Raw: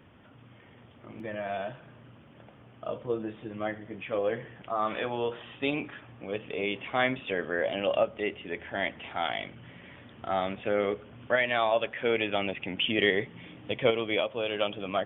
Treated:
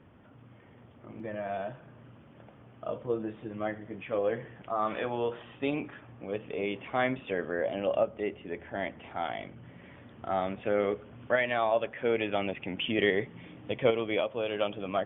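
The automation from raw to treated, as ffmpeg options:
-af "asetnsamples=n=441:p=0,asendcmd='1.98 lowpass f 2100;5.43 lowpass f 1500;7.51 lowpass f 1000;9.79 lowpass f 1500;10.61 lowpass f 2100;11.54 lowpass f 1300;12.19 lowpass f 1900',lowpass=f=1400:p=1"

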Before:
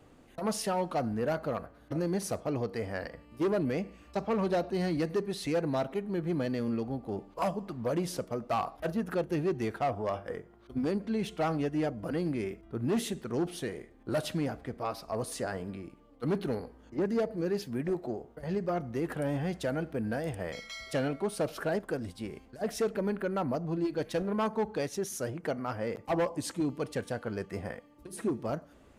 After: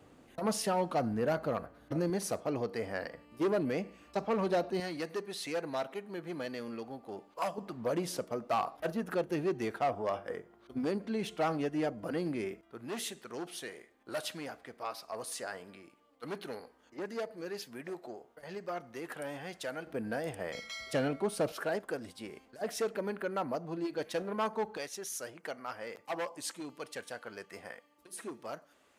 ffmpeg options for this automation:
-af "asetnsamples=n=441:p=0,asendcmd='2.1 highpass f 230;4.8 highpass f 800;7.58 highpass f 270;12.61 highpass f 1100;19.87 highpass f 330;20.55 highpass f 130;21.52 highpass f 480;24.77 highpass f 1300',highpass=f=88:p=1"

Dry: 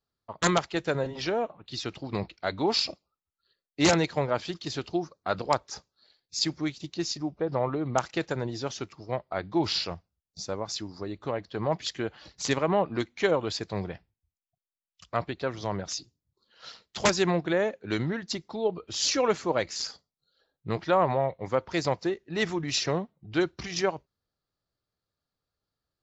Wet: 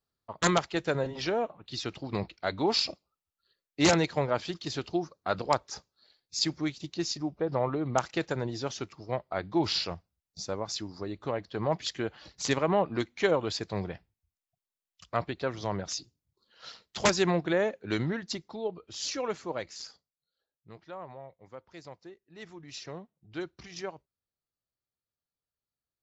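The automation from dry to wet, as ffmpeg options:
-af "volume=2.37,afade=t=out:st=18.11:d=0.69:silence=0.446684,afade=t=out:st=19.54:d=1.14:silence=0.266073,afade=t=in:st=22.34:d=1.03:silence=0.375837"

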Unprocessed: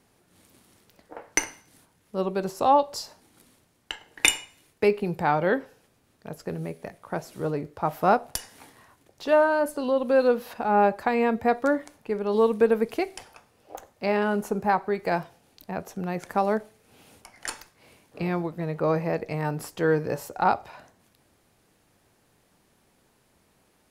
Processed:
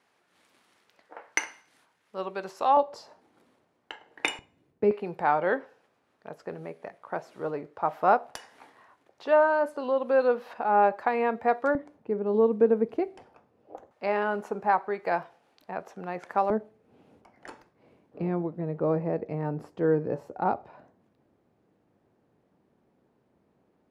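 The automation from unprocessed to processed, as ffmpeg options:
-af "asetnsamples=n=441:p=0,asendcmd='2.77 bandpass f 650;4.39 bandpass f 220;4.91 bandpass f 960;11.75 bandpass f 300;13.91 bandpass f 1000;16.5 bandpass f 300',bandpass=f=1600:t=q:w=0.62:csg=0"

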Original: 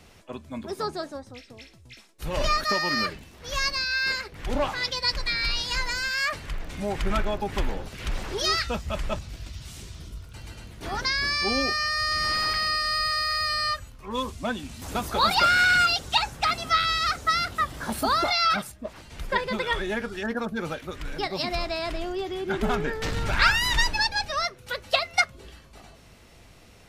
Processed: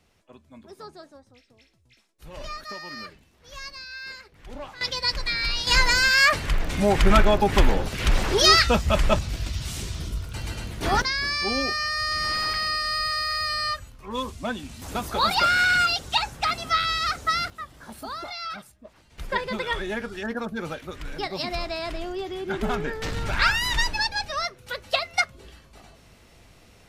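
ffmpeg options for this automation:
-af "asetnsamples=n=441:p=0,asendcmd='4.81 volume volume 0.5dB;5.67 volume volume 9dB;11.02 volume volume -0.5dB;17.5 volume volume -11.5dB;19.18 volume volume -1dB',volume=0.251"

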